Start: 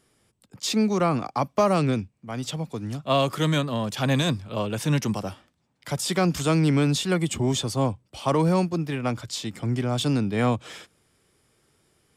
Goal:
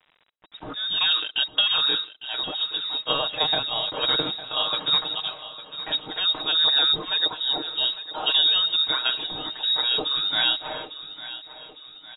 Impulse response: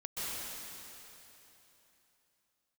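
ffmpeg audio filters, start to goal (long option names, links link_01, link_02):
-filter_complex "[0:a]equalizer=frequency=81:width=5.8:gain=5,aecho=1:1:6.4:0.73,aexciter=amount=12.7:drive=1.2:freq=2600,acompressor=threshold=-15dB:ratio=12,highshelf=frequency=2300:gain=-6.5,aresample=16000,acrusher=bits=7:mix=0:aa=0.000001,aresample=44100,aecho=1:1:854|1708|2562|3416|4270:0.188|0.0942|0.0471|0.0235|0.0118,asplit=2[link_01][link_02];[1:a]atrim=start_sample=2205,atrim=end_sample=6174,asetrate=48510,aresample=44100[link_03];[link_02][link_03]afir=irnorm=-1:irlink=0,volume=-21.5dB[link_04];[link_01][link_04]amix=inputs=2:normalize=0,lowpass=frequency=3300:width_type=q:width=0.5098,lowpass=frequency=3300:width_type=q:width=0.6013,lowpass=frequency=3300:width_type=q:width=0.9,lowpass=frequency=3300:width_type=q:width=2.563,afreqshift=-3900"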